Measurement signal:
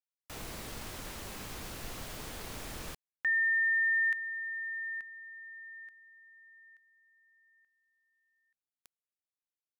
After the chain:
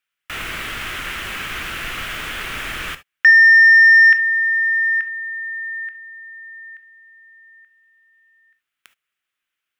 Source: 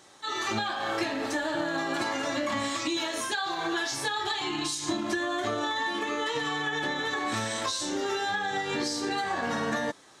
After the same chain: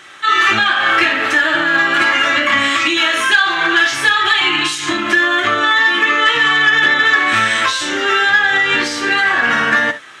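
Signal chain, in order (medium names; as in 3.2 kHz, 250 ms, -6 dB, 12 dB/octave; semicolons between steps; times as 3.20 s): high-order bell 2 kHz +14 dB; saturation -9.5 dBFS; gated-style reverb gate 90 ms flat, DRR 10 dB; trim +8 dB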